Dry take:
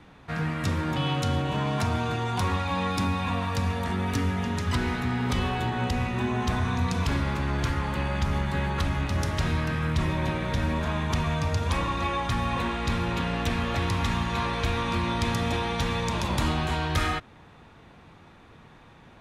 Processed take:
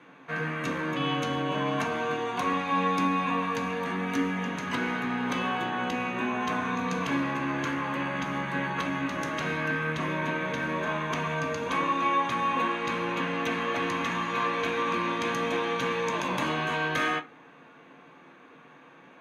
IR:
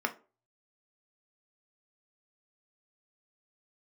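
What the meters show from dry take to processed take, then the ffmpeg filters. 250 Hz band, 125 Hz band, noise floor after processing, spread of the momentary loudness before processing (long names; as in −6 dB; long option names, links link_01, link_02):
−1.5 dB, −11.0 dB, −53 dBFS, 1 LU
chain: -filter_complex "[1:a]atrim=start_sample=2205,asetrate=52920,aresample=44100[link_01];[0:a][link_01]afir=irnorm=-1:irlink=0,volume=-4dB"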